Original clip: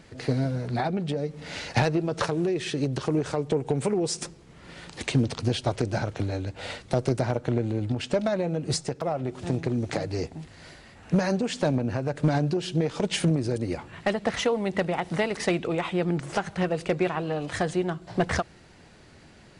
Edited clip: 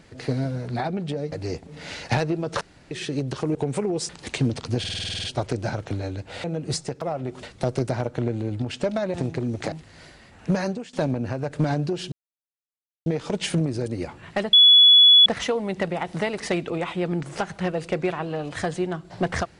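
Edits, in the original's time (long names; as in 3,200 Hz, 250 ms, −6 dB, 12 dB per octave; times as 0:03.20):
0:02.26–0:02.56: fill with room tone
0:03.20–0:03.63: remove
0:04.17–0:04.83: remove
0:05.53: stutter 0.05 s, 10 plays
0:08.44–0:09.43: move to 0:06.73
0:10.01–0:10.36: move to 0:01.32
0:11.27–0:11.57: fade out, to −23 dB
0:12.76: splice in silence 0.94 s
0:14.23: insert tone 3,400 Hz −9 dBFS 0.73 s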